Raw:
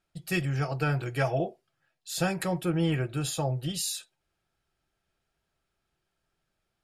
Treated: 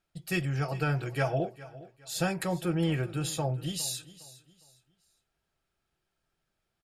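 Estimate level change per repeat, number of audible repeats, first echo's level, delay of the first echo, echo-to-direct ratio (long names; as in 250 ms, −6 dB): −10.0 dB, 2, −18.0 dB, 409 ms, −17.5 dB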